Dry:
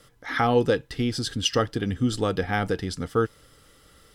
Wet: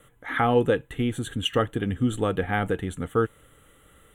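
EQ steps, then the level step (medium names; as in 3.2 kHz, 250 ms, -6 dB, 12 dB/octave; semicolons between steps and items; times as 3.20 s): Butterworth band-stop 5 kHz, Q 1.2; 0.0 dB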